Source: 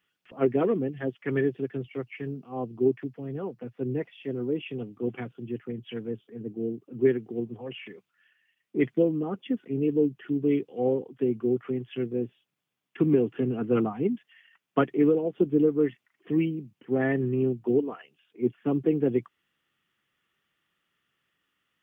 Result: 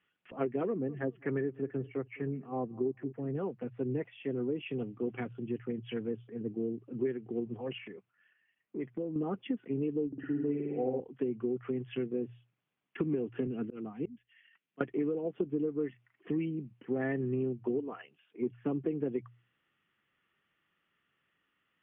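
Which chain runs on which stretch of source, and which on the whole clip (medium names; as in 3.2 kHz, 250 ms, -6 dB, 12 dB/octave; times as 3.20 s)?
0.67–3.35 s: low-pass 1.9 kHz + feedback delay 208 ms, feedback 26%, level -23.5 dB
7.78–9.16 s: treble shelf 2.4 kHz -9.5 dB + compression 2:1, threshold -42 dBFS
10.07–11.00 s: low-pass 1.9 kHz + comb of notches 1.1 kHz + flutter echo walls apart 9.4 m, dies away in 1.1 s
13.47–14.81 s: Bessel high-pass 170 Hz + peaking EQ 910 Hz -10 dB 1.9 oct + slow attack 415 ms
whole clip: low-pass 3 kHz 24 dB/octave; hum notches 60/120 Hz; compression 5:1, threshold -30 dBFS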